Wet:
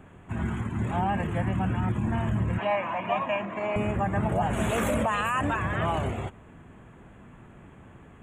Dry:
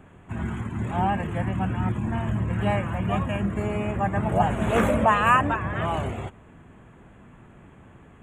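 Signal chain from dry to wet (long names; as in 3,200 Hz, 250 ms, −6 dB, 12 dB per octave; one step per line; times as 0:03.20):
0:04.53–0:05.76: high-shelf EQ 3,300 Hz +10.5 dB
brickwall limiter −17.5 dBFS, peak gain reduction 13 dB
0:02.58–0:03.76: loudspeaker in its box 340–5,600 Hz, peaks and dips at 420 Hz −7 dB, 640 Hz +7 dB, 990 Hz +9 dB, 1,400 Hz −4 dB, 2,400 Hz +7 dB, 5,000 Hz −7 dB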